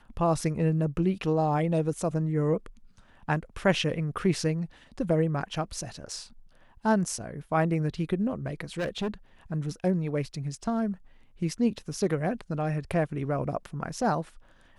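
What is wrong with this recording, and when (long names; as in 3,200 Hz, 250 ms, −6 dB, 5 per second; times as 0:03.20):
0:08.78–0:09.14: clipping −26 dBFS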